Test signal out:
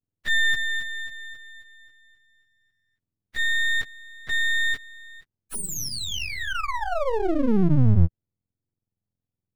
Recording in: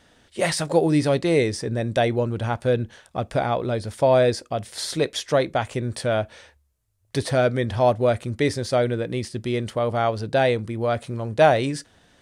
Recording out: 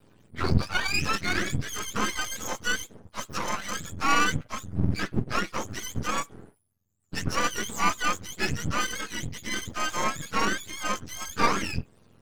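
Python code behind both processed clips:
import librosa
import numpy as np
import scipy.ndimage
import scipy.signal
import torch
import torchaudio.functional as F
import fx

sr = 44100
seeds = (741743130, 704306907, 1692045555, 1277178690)

y = fx.octave_mirror(x, sr, pivot_hz=860.0)
y = np.maximum(y, 0.0)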